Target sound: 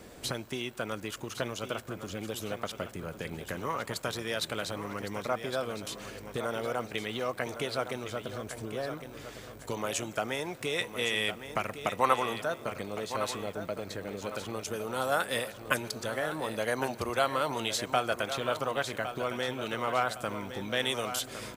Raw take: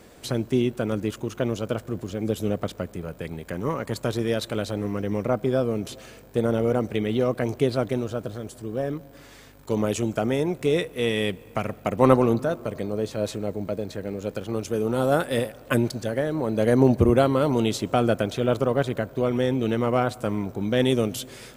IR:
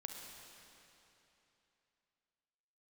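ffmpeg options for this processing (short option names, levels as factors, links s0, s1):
-filter_complex "[0:a]acrossover=split=740|2900[s0][s1][s2];[s0]acompressor=threshold=0.0158:ratio=16[s3];[s3][s1][s2]amix=inputs=3:normalize=0,aecho=1:1:1110|2220|3330|4440:0.316|0.104|0.0344|0.0114"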